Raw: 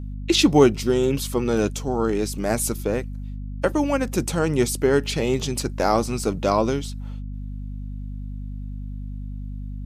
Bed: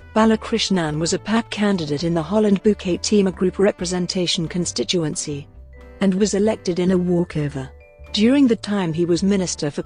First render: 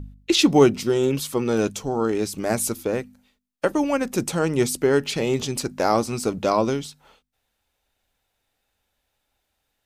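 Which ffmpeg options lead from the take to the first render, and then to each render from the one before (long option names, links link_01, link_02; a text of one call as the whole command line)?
ffmpeg -i in.wav -af "bandreject=frequency=50:width_type=h:width=4,bandreject=frequency=100:width_type=h:width=4,bandreject=frequency=150:width_type=h:width=4,bandreject=frequency=200:width_type=h:width=4,bandreject=frequency=250:width_type=h:width=4" out.wav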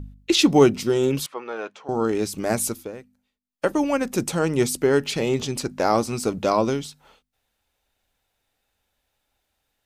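ffmpeg -i in.wav -filter_complex "[0:a]asettb=1/sr,asplit=3[link_01][link_02][link_03];[link_01]atrim=end=1.264[link_04];[link_02]atrim=start=1.26:end=1.89,asetpts=PTS-STARTPTS,afade=type=in:duration=0.004:curve=qsin,afade=type=out:start_time=0.626:duration=0.004:curve=qsin,highpass=750,lowpass=2000[link_05];[link_03]atrim=start=1.886[link_06];[link_04][link_05]acrossfade=duration=0.004:curve1=hsin:curve2=qsin[link_07];[link_07][link_06]acrossfade=duration=0.004:curve1=qsin:curve2=hsin,asettb=1/sr,asplit=3[link_08][link_09][link_10];[link_08]atrim=end=5.294[link_11];[link_09]atrim=start=5.29:end=5.94,asetpts=PTS-STARTPTS,afade=type=in:duration=0.004:curve=qsin,afade=type=out:start_time=0.646:duration=0.004:curve=qsin,highshelf=frequency=8100:gain=-5[link_12];[link_10]atrim=start=5.936[link_13];[link_11][link_12]acrossfade=duration=0.004:curve1=hsin:curve2=qsin[link_14];[link_14][link_13]acrossfade=duration=0.004:curve1=qsin:curve2=hsin,asplit=3[link_15][link_16][link_17];[link_15]atrim=end=2.93,asetpts=PTS-STARTPTS,afade=type=out:start_time=2.64:duration=0.29:silence=0.223872[link_18];[link_16]atrim=start=2.93:end=3.39,asetpts=PTS-STARTPTS,volume=-13dB[link_19];[link_17]atrim=start=3.39,asetpts=PTS-STARTPTS,afade=type=in:duration=0.29:silence=0.223872[link_20];[link_18][link_19][link_20]concat=n=3:v=0:a=1" out.wav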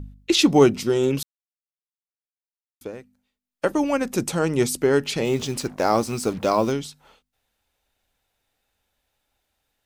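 ffmpeg -i in.wav -filter_complex "[0:a]asettb=1/sr,asplit=3[link_01][link_02][link_03];[link_01]atrim=end=5.254[link_04];[link_02]atrim=start=5.25:end=6.72,asetpts=PTS-STARTPTS,afade=type=in:duration=0.004:curve=qsin,afade=type=out:start_time=1.466:duration=0.004:curve=qsin,acrusher=bits=6:mix=0:aa=0.5[link_05];[link_03]atrim=start=6.716[link_06];[link_04][link_05]acrossfade=duration=0.004:curve1=hsin:curve2=qsin[link_07];[link_07][link_06]acrossfade=duration=0.004:curve1=qsin:curve2=hsin,asplit=3[link_08][link_09][link_10];[link_08]atrim=end=1.23,asetpts=PTS-STARTPTS,afade=type=out:start_time=1.226:duration=0.004:curve=hsin[link_11];[link_09]atrim=start=1.23:end=2.81,asetpts=PTS-STARTPTS,volume=0[link_12];[link_10]atrim=start=2.81,asetpts=PTS-STARTPTS,afade=type=in:duration=0.004:curve=hsin[link_13];[link_11][link_12][link_13]concat=n=3:v=0:a=1" out.wav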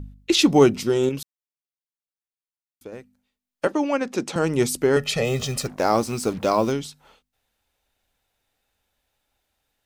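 ffmpeg -i in.wav -filter_complex "[0:a]asettb=1/sr,asplit=3[link_01][link_02][link_03];[link_01]atrim=end=3.674[link_04];[link_02]atrim=start=3.67:end=4.36,asetpts=PTS-STARTPTS,afade=type=in:duration=0.004:curve=qsin,afade=type=out:start_time=0.686:duration=0.004:curve=qsin,acrossover=split=190 6600:gain=0.112 1 0.141[link_05][link_06][link_07];[link_05][link_06][link_07]amix=inputs=3:normalize=0[link_08];[link_03]atrim=start=4.356[link_09];[link_04][link_08]acrossfade=duration=0.004:curve1=hsin:curve2=qsin[link_10];[link_10][link_09]acrossfade=duration=0.004:curve1=qsin:curve2=hsin,asettb=1/sr,asplit=3[link_11][link_12][link_13];[link_11]atrim=end=4.964[link_14];[link_12]atrim=start=4.96:end=5.67,asetpts=PTS-STARTPTS,afade=type=in:duration=0.004:curve=qsin,afade=type=out:start_time=0.706:duration=0.004:curve=qsin,aecho=1:1:1.6:0.84,atrim=end_sample=31311[link_15];[link_13]atrim=start=5.666[link_16];[link_14][link_15]acrossfade=duration=0.004:curve1=hsin:curve2=qsin[link_17];[link_17][link_16]acrossfade=duration=0.004:curve1=qsin:curve2=hsin,asplit=3[link_18][link_19][link_20];[link_18]atrim=end=1.092[link_21];[link_19]atrim=start=1.088:end=2.922,asetpts=PTS-STARTPTS,volume=-5dB[link_22];[link_20]atrim=start=2.918[link_23];[link_21][link_22]acrossfade=duration=0.004:curve1=hsin:curve2=hsin[link_24];[link_24][link_23]acrossfade=duration=0.004:curve1=hsin:curve2=hsin" out.wav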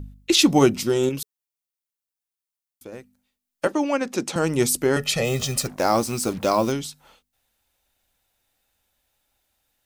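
ffmpeg -i in.wav -af "highshelf=frequency=6600:gain=8,bandreject=frequency=430:width=12" out.wav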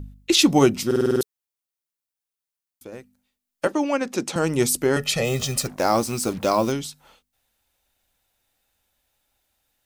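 ffmpeg -i in.wav -filter_complex "[0:a]asplit=8[link_01][link_02][link_03][link_04][link_05][link_06][link_07][link_08];[link_01]atrim=end=0.912[link_09];[link_02]atrim=start=0.858:end=0.912[link_10];[link_03]atrim=start=0.858:end=0.912[link_11];[link_04]atrim=start=0.858:end=0.912[link_12];[link_05]atrim=start=0.858:end=0.912[link_13];[link_06]atrim=start=0.858:end=0.912[link_14];[link_07]atrim=start=0.858:end=0.912[link_15];[link_08]atrim=start=1.208[link_16];[link_09][link_10]acrossfade=duration=0.004:curve1=hsin:curve2=hsin[link_17];[link_17][link_11]acrossfade=duration=0.004:curve1=hsin:curve2=hsin[link_18];[link_18][link_12]acrossfade=duration=0.004:curve1=hsin:curve2=hsin[link_19];[link_19][link_13]acrossfade=duration=0.004:curve1=hsin:curve2=hsin[link_20];[link_20][link_14]acrossfade=duration=0.004:curve1=hsin:curve2=hsin[link_21];[link_21][link_15]acrossfade=duration=0.004:curve1=hsin:curve2=hsin[link_22];[link_22][link_16]acrossfade=duration=0.004:curve1=hsin:curve2=hsin" out.wav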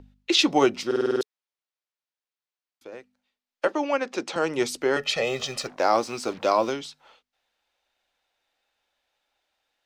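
ffmpeg -i in.wav -filter_complex "[0:a]acrossover=split=330 5600:gain=0.158 1 0.0891[link_01][link_02][link_03];[link_01][link_02][link_03]amix=inputs=3:normalize=0" out.wav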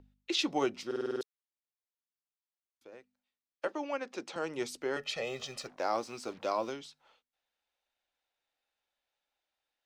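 ffmpeg -i in.wav -af "volume=-11dB" out.wav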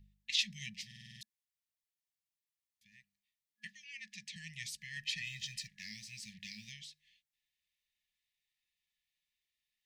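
ffmpeg -i in.wav -af "afftfilt=real='re*(1-between(b*sr/4096,220,1700))':imag='im*(1-between(b*sr/4096,220,1700))':win_size=4096:overlap=0.75" out.wav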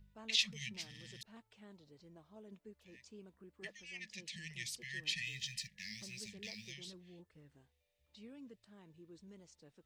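ffmpeg -i in.wav -i bed.wav -filter_complex "[1:a]volume=-39dB[link_01];[0:a][link_01]amix=inputs=2:normalize=0" out.wav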